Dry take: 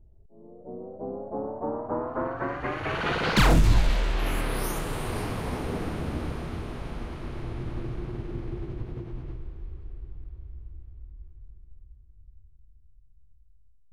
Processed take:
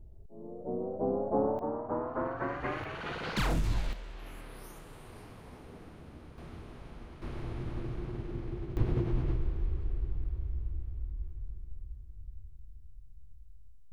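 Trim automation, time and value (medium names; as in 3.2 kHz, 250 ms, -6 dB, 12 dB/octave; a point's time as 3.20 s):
+4 dB
from 1.59 s -4 dB
from 2.84 s -11 dB
from 3.93 s -18.5 dB
from 6.38 s -12 dB
from 7.22 s -4 dB
from 8.77 s +6.5 dB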